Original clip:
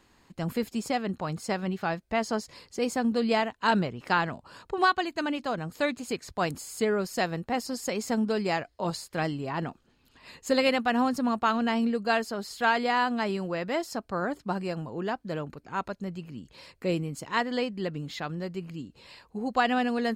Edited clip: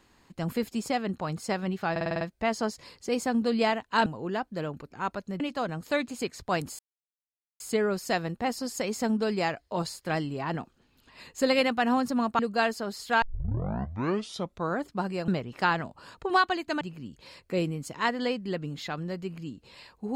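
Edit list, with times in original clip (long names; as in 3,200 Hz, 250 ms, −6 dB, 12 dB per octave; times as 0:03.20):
0:01.91: stutter 0.05 s, 7 plays
0:03.76–0:05.29: swap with 0:14.79–0:16.13
0:06.68: splice in silence 0.81 s
0:11.47–0:11.90: remove
0:12.73: tape start 1.55 s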